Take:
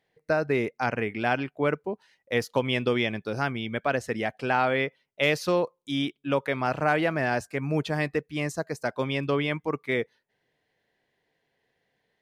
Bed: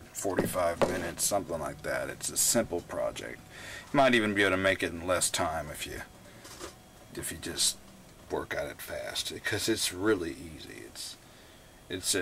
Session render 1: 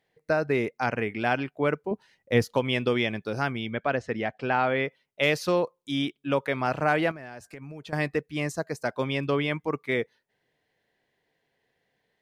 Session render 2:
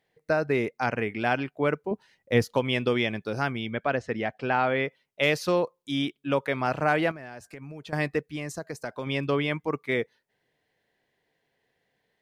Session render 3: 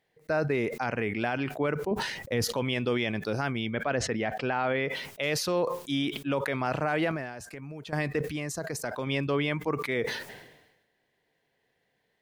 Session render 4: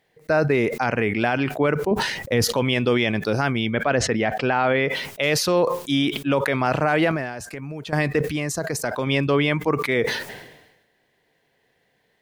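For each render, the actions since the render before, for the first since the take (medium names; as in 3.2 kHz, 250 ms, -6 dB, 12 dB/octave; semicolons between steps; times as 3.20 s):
1.91–2.55 s: bass shelf 320 Hz +10.5 dB; 3.70–4.85 s: distance through air 130 m; 7.11–7.93 s: compression 8:1, threshold -38 dBFS
8.35–9.07 s: compression 5:1, threshold -29 dBFS
peak limiter -18.5 dBFS, peak gain reduction 9 dB; decay stretcher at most 55 dB/s
trim +8 dB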